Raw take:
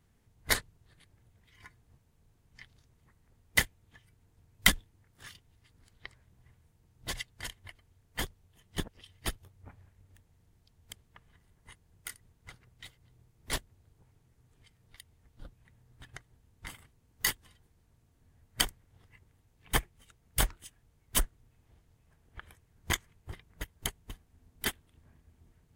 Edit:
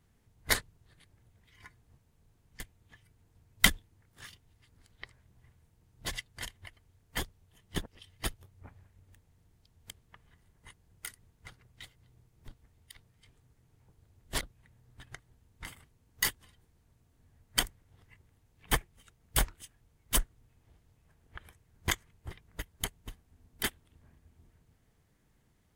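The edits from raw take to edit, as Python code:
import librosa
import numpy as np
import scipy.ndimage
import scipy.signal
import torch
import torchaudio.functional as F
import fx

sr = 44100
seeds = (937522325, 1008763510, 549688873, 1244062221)

y = fx.edit(x, sr, fx.cut(start_s=2.6, length_s=1.02),
    fx.reverse_span(start_s=13.5, length_s=1.93), tone=tone)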